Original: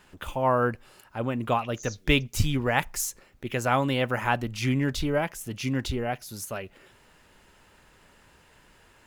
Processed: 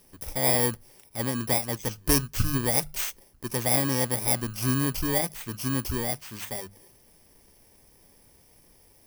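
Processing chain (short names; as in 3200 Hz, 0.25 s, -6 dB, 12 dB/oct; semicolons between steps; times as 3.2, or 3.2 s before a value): FFT order left unsorted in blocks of 32 samples; notches 50/100/150/200 Hz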